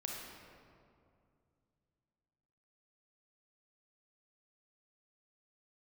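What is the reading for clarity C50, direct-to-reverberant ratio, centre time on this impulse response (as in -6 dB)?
-0.5 dB, -1.5 dB, 0.106 s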